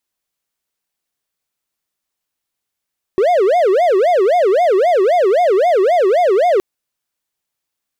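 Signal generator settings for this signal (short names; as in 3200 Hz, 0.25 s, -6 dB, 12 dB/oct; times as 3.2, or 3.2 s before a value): siren wail 370–723 Hz 3.8/s triangle -7.5 dBFS 3.42 s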